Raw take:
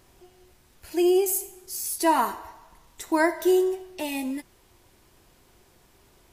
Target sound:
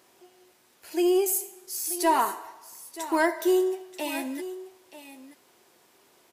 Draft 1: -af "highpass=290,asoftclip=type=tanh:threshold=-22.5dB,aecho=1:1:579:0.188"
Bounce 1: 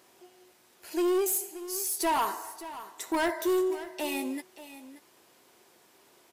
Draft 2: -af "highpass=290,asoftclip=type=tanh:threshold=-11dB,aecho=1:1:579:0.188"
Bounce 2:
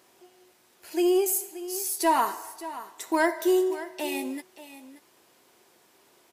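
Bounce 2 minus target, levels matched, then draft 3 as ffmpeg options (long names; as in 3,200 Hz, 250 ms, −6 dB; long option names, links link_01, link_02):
echo 354 ms early
-af "highpass=290,asoftclip=type=tanh:threshold=-11dB,aecho=1:1:933:0.188"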